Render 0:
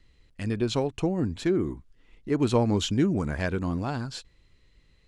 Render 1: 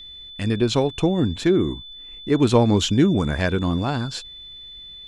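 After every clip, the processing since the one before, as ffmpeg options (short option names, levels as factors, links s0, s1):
-af "aeval=exprs='val(0)+0.00631*sin(2*PI*3500*n/s)':c=same,volume=2.11"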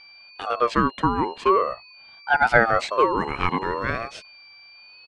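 -filter_complex "[0:a]aresample=22050,aresample=44100,acrossover=split=240 2400:gain=0.0891 1 0.2[s0][s1][s2];[s0][s1][s2]amix=inputs=3:normalize=0,aeval=exprs='val(0)*sin(2*PI*890*n/s+890*0.3/0.44*sin(2*PI*0.44*n/s))':c=same,volume=1.68"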